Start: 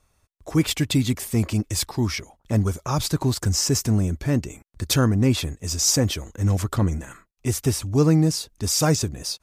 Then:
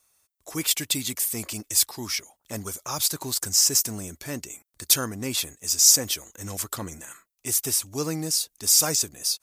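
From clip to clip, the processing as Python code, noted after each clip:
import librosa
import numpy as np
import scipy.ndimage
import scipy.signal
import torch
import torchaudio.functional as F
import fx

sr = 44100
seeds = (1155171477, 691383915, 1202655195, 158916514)

y = fx.riaa(x, sr, side='recording')
y = y * 10.0 ** (-5.5 / 20.0)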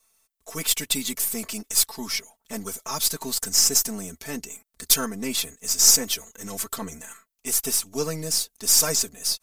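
y = np.where(x < 0.0, 10.0 ** (-3.0 / 20.0) * x, x)
y = y + 0.98 * np.pad(y, (int(4.5 * sr / 1000.0), 0))[:len(y)]
y = y * 10.0 ** (-1.0 / 20.0)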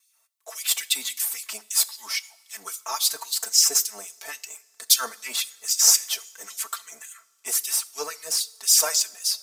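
y = fx.filter_lfo_highpass(x, sr, shape='sine', hz=3.7, low_hz=600.0, high_hz=4000.0, q=1.6)
y = fx.wow_flutter(y, sr, seeds[0], rate_hz=2.1, depth_cents=18.0)
y = fx.rev_double_slope(y, sr, seeds[1], early_s=0.54, late_s=3.6, knee_db=-20, drr_db=15.5)
y = y * 10.0 ** (-1.0 / 20.0)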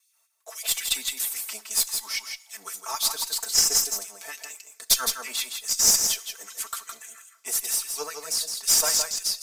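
y = fx.tube_stage(x, sr, drive_db=6.0, bias=0.5)
y = y + 10.0 ** (-6.0 / 20.0) * np.pad(y, (int(164 * sr / 1000.0), 0))[:len(y)]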